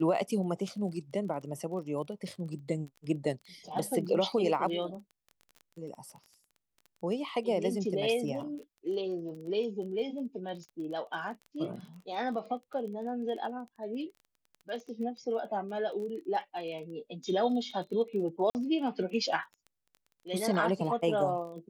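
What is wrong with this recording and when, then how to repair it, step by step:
surface crackle 20 per second −41 dBFS
0:18.50–0:18.55: drop-out 49 ms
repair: click removal
repair the gap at 0:18.50, 49 ms

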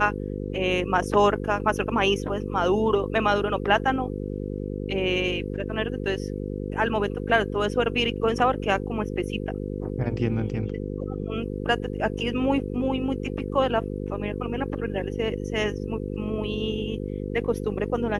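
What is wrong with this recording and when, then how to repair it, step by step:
mains buzz 50 Hz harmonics 10 −31 dBFS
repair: hum removal 50 Hz, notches 10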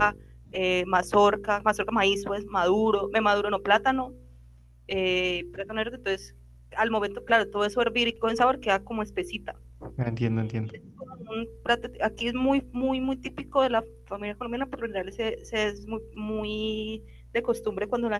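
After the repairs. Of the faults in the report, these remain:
none of them is left

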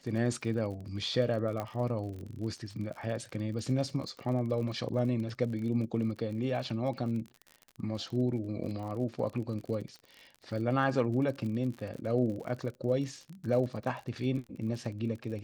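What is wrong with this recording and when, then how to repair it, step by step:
surface crackle 42 per second −39 dBFS
0:01.60: click −22 dBFS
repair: click removal

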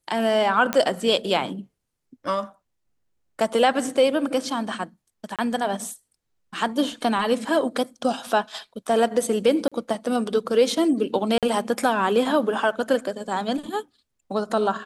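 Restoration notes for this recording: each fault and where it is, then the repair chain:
0:00.73: click −7 dBFS
0:05.36–0:05.39: drop-out 27 ms
0:09.68–0:09.72: drop-out 36 ms
0:11.38–0:11.43: drop-out 47 ms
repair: click removal
repair the gap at 0:05.36, 27 ms
repair the gap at 0:09.68, 36 ms
repair the gap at 0:11.38, 47 ms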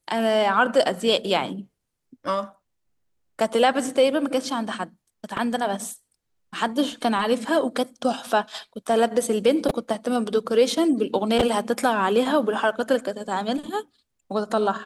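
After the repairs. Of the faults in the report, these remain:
none of them is left

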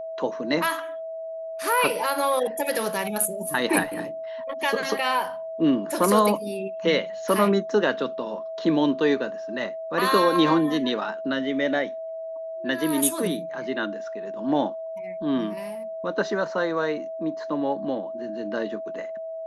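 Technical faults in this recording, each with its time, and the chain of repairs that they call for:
whistle 650 Hz −31 dBFS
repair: notch filter 650 Hz, Q 30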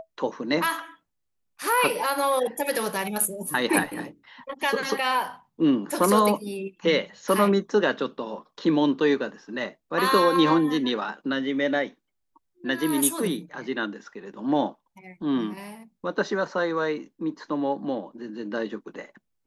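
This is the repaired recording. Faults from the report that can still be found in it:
none of them is left

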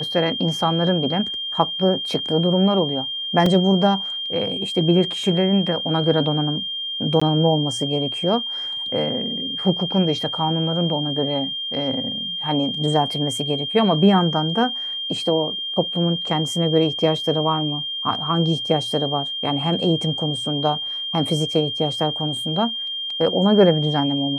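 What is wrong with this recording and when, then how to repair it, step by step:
whistle 3,200 Hz −25 dBFS
0:03.46: drop-out 2.9 ms
0:07.20–0:07.21: drop-out 15 ms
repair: notch filter 3,200 Hz, Q 30
repair the gap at 0:03.46, 2.9 ms
repair the gap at 0:07.20, 15 ms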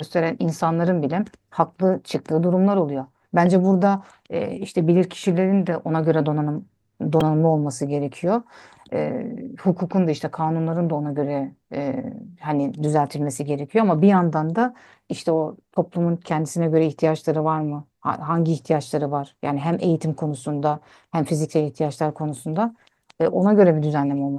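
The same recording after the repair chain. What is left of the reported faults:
none of them is left

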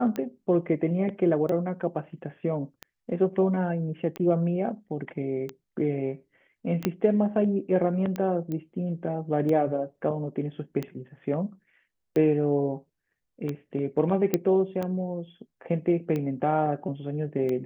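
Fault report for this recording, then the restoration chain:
scratch tick 45 rpm −19 dBFS
0:06.85: click −11 dBFS
0:08.52: click −22 dBFS
0:14.34: click −9 dBFS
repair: click removal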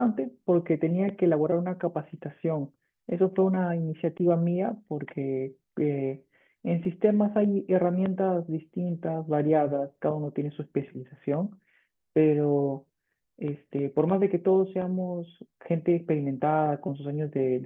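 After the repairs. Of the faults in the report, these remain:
0:06.85: click

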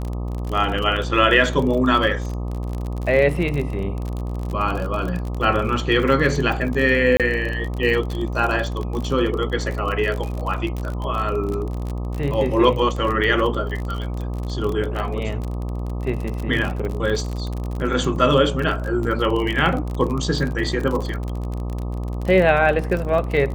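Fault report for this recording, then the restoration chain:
mains buzz 60 Hz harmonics 21 −26 dBFS
surface crackle 41 per second −25 dBFS
0:07.17–0:07.20: drop-out 27 ms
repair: click removal
hum removal 60 Hz, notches 21
repair the gap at 0:07.17, 27 ms

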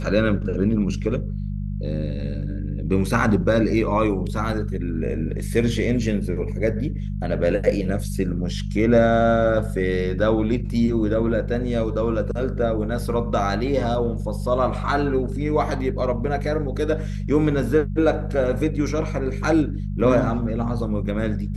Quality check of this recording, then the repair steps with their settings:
mains hum 50 Hz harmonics 4 −27 dBFS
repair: hum removal 50 Hz, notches 4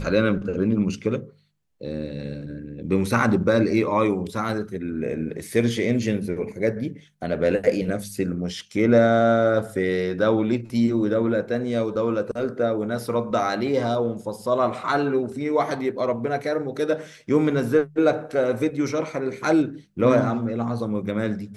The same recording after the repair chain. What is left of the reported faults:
none of them is left

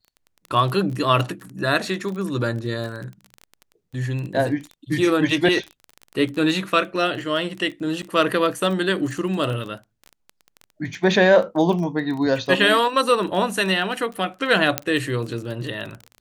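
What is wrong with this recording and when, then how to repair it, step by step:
surface crackle 21 per second −28 dBFS
0:08.02–0:08.03: drop-out 7.5 ms
0:14.78: click −2 dBFS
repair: click removal
repair the gap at 0:08.02, 7.5 ms

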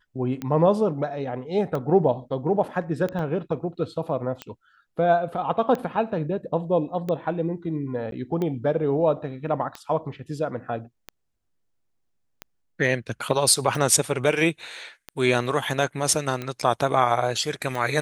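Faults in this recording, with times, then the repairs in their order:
scratch tick 45 rpm −17 dBFS
0:03.19: drop-out 2.1 ms
0:08.11–0:08.12: drop-out 12 ms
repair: click removal
repair the gap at 0:03.19, 2.1 ms
repair the gap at 0:08.11, 12 ms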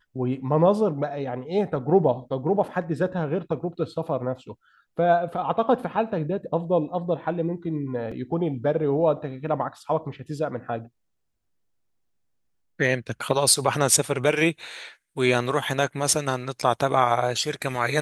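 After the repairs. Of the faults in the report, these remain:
none of them is left

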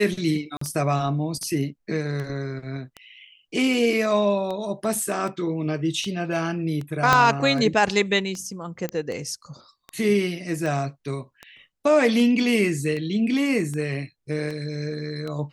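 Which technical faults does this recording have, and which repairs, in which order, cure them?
scratch tick 78 rpm −20 dBFS
0:00.57–0:00.61: drop-out 44 ms
0:07.13: click −3 dBFS
0:08.89: click −14 dBFS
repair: click removal
repair the gap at 0:00.57, 44 ms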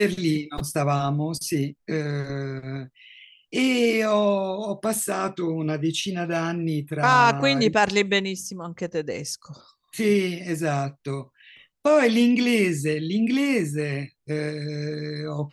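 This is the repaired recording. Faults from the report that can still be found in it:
0:07.13: click

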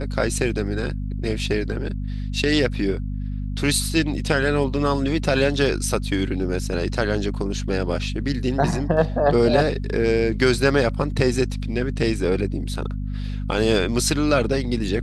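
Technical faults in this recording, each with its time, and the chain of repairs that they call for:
mains hum 50 Hz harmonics 5 −27 dBFS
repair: hum removal 50 Hz, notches 5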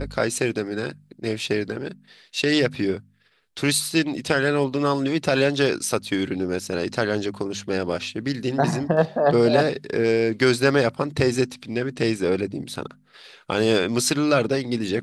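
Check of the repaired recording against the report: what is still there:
none of them is left

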